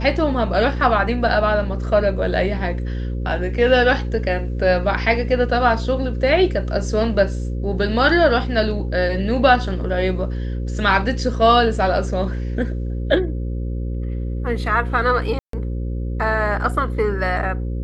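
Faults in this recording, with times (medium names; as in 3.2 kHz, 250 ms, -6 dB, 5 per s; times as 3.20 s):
buzz 60 Hz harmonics 9 -24 dBFS
15.39–15.53 s: dropout 143 ms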